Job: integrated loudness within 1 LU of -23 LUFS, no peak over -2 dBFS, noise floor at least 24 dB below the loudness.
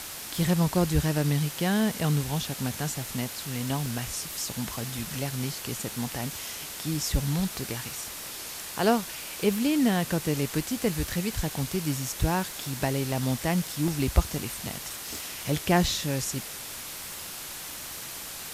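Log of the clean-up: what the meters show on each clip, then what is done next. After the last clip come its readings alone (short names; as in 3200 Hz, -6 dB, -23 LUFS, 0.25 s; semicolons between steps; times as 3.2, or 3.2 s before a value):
dropouts 6; longest dropout 1.1 ms; noise floor -39 dBFS; noise floor target -53 dBFS; loudness -29.0 LUFS; peak -8.0 dBFS; loudness target -23.0 LUFS
-> interpolate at 0.34/3.86/13.12/13.88/15.14/15.88, 1.1 ms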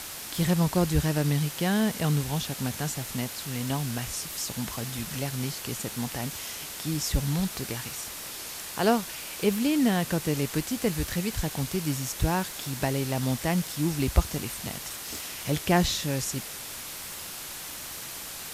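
dropouts 0; noise floor -39 dBFS; noise floor target -53 dBFS
-> denoiser 14 dB, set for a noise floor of -39 dBFS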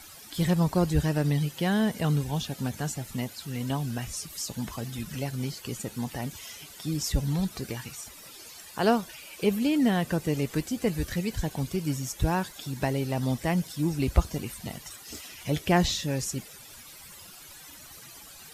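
noise floor -48 dBFS; noise floor target -53 dBFS
-> denoiser 6 dB, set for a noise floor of -48 dBFS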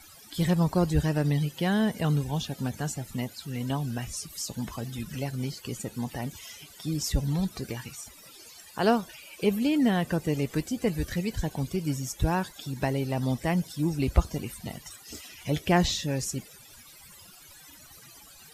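noise floor -51 dBFS; noise floor target -53 dBFS
-> denoiser 6 dB, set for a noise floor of -51 dBFS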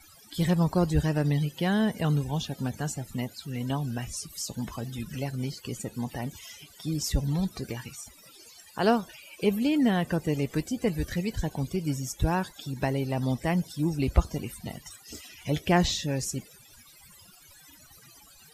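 noise floor -54 dBFS; loudness -29.0 LUFS; peak -8.5 dBFS; loudness target -23.0 LUFS
-> gain +6 dB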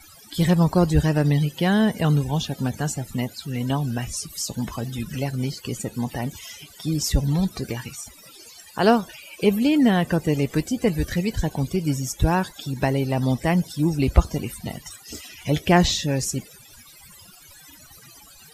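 loudness -23.0 LUFS; peak -2.5 dBFS; noise floor -48 dBFS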